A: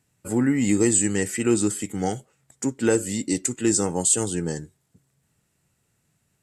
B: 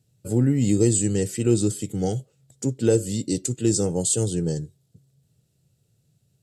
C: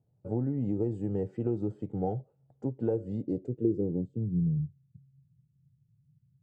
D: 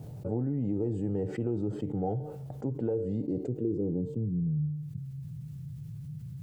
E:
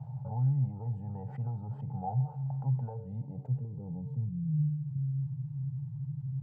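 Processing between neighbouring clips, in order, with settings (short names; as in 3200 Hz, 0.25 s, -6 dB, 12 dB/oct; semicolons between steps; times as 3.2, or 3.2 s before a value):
graphic EQ 125/250/500/1000/2000/4000/8000 Hz +10/-4/+5/-11/-11/+5/-4 dB
compressor 4:1, threshold -21 dBFS, peak gain reduction 7 dB; low-pass sweep 850 Hz -> 150 Hz, 3.14–4.49; gain -6.5 dB
resonator 150 Hz, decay 0.41 s, harmonics all, mix 50%; fast leveller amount 70%
double band-pass 340 Hz, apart 2.7 oct; gain +8.5 dB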